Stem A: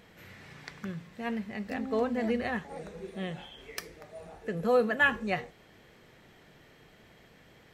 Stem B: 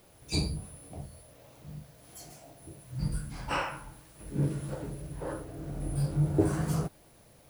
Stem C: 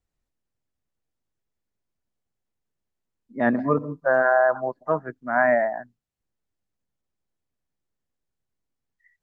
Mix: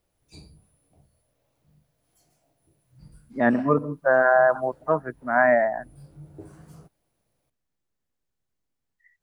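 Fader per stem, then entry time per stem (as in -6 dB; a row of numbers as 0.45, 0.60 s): off, -18.0 dB, +1.0 dB; off, 0.00 s, 0.00 s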